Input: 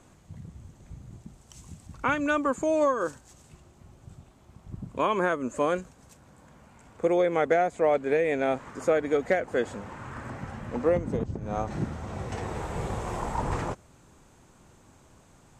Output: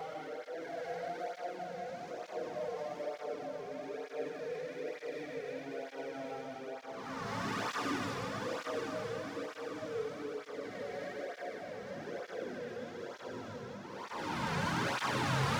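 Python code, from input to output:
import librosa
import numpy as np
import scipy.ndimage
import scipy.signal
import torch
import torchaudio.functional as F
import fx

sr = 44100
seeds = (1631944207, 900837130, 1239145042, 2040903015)

p1 = fx.cvsd(x, sr, bps=32000)
p2 = scipy.signal.sosfilt(scipy.signal.butter(2, 96.0, 'highpass', fs=sr, output='sos'), p1)
p3 = fx.gate_flip(p2, sr, shuts_db=-30.0, range_db=-36)
p4 = fx.fold_sine(p3, sr, drive_db=15, ceiling_db=-28.5)
p5 = p3 + (p4 * 10.0 ** (-11.5 / 20.0))
p6 = fx.paulstretch(p5, sr, seeds[0], factor=5.7, window_s=0.25, from_s=7.39)
p7 = fx.power_curve(p6, sr, exponent=0.7)
p8 = fx.echo_diffused(p7, sr, ms=790, feedback_pct=55, wet_db=-5)
p9 = fx.flanger_cancel(p8, sr, hz=1.1, depth_ms=3.5)
y = p9 * 10.0 ** (4.0 / 20.0)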